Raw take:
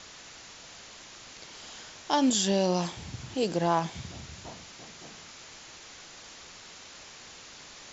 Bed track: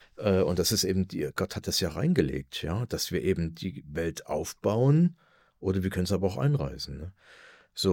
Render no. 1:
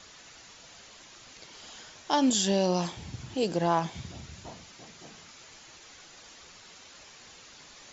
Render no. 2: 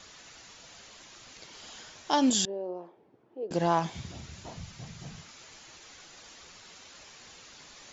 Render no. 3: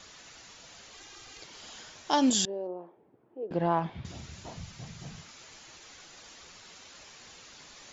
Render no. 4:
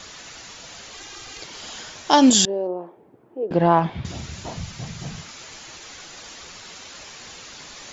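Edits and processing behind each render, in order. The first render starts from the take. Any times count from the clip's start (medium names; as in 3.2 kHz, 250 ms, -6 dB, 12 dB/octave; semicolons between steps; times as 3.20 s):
noise reduction 6 dB, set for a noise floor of -49 dBFS
2.45–3.51 s: ladder band-pass 480 Hz, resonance 45%; 4.57–5.22 s: resonant low shelf 200 Hz +13 dB, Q 1.5
0.93–1.43 s: comb 2.5 ms; 2.67–4.05 s: distance through air 390 m
trim +10.5 dB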